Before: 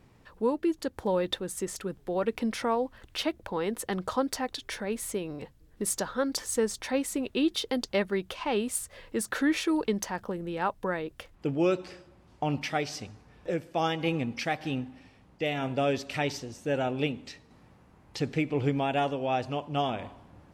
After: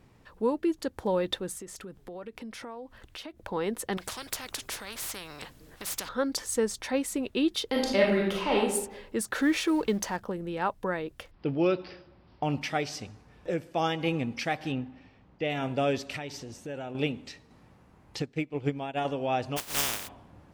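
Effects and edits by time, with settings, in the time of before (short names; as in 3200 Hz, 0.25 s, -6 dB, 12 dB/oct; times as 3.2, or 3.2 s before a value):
1.57–3.4 compressor 4:1, threshold -40 dBFS
3.97–6.09 spectral compressor 4:1
7.68–8.58 reverb throw, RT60 0.81 s, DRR -3 dB
9.38–10.17 G.711 law mismatch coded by mu
11.31–12.43 careless resampling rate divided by 4×, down none, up filtered
14.72–15.5 air absorption 130 m
16.16–16.95 compressor 3:1, threshold -37 dBFS
18.22–19.05 upward expander 2.5:1, over -35 dBFS
19.56–20.07 spectral contrast lowered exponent 0.11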